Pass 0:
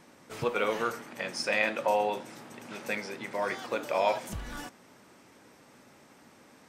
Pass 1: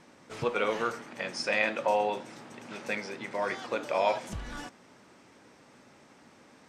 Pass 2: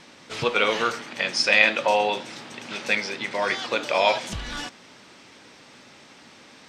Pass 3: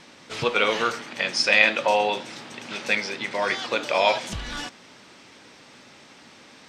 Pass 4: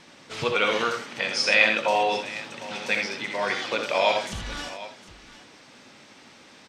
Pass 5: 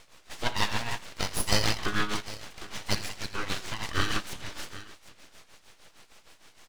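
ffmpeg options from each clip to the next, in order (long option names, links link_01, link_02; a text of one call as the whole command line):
ffmpeg -i in.wav -af "lowpass=7900" out.wav
ffmpeg -i in.wav -af "equalizer=frequency=3700:width=0.72:gain=11,volume=4.5dB" out.wav
ffmpeg -i in.wav -af anull out.wav
ffmpeg -i in.wav -af "aecho=1:1:64|83|755:0.398|0.398|0.158,volume=-2.5dB" out.wav
ffmpeg -i in.wav -af "aeval=exprs='abs(val(0))':channel_layout=same,tremolo=f=6.5:d=0.72" out.wav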